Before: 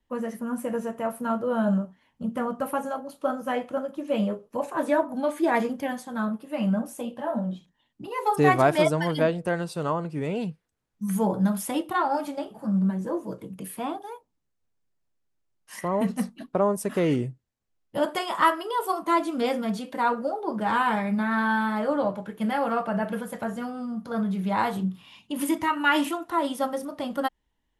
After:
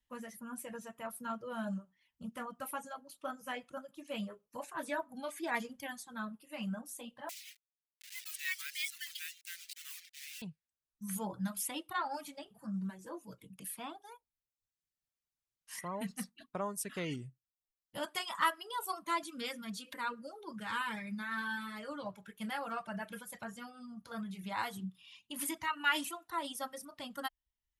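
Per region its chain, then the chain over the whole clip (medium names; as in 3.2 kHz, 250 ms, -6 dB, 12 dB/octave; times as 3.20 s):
7.29–10.42 s: send-on-delta sampling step -32 dBFS + steep high-pass 1.9 kHz
19.23–22.06 s: peaking EQ 750 Hz -11.5 dB 0.46 oct + upward compressor, threshold -29 dBFS
whole clip: amplifier tone stack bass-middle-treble 5-5-5; reverb removal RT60 0.85 s; trim +3.5 dB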